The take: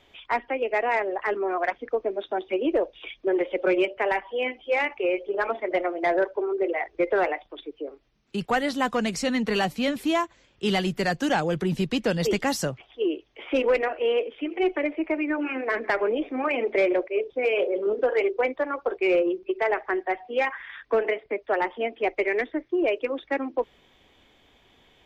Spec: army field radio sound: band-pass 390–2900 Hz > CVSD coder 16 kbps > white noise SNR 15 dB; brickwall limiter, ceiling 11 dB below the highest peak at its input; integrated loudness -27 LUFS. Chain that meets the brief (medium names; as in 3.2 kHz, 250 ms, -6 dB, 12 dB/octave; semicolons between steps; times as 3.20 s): peak limiter -25 dBFS; band-pass 390–2900 Hz; CVSD coder 16 kbps; white noise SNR 15 dB; trim +9 dB